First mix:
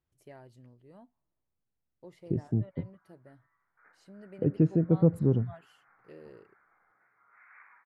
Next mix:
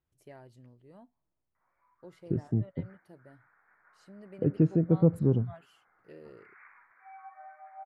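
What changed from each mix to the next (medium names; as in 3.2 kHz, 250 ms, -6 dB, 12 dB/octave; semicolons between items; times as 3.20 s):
background: entry -0.95 s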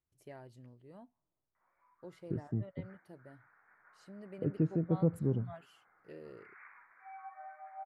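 second voice -7.0 dB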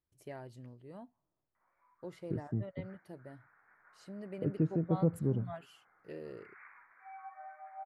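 first voice +4.5 dB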